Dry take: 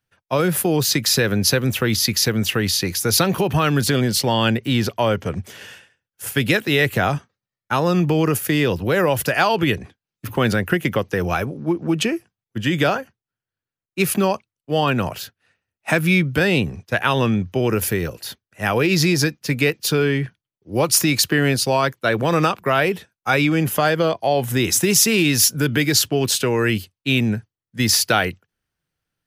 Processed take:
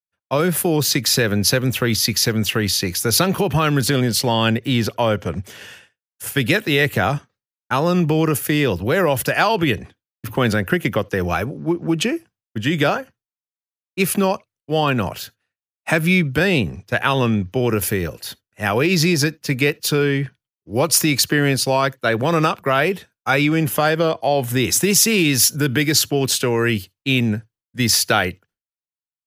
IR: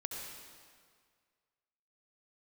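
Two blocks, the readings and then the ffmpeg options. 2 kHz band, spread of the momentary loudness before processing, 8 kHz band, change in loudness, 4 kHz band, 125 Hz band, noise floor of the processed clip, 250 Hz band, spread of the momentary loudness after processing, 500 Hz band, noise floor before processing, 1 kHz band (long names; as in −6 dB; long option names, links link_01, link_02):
+0.5 dB, 10 LU, +0.5 dB, +0.5 dB, +0.5 dB, +0.5 dB, below −85 dBFS, +0.5 dB, 10 LU, +0.5 dB, below −85 dBFS, +0.5 dB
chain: -filter_complex "[0:a]agate=range=-33dB:threshold=-47dB:ratio=3:detection=peak,asplit=2[link_01][link_02];[1:a]atrim=start_sample=2205,atrim=end_sample=3528[link_03];[link_02][link_03]afir=irnorm=-1:irlink=0,volume=-19.5dB[link_04];[link_01][link_04]amix=inputs=2:normalize=0"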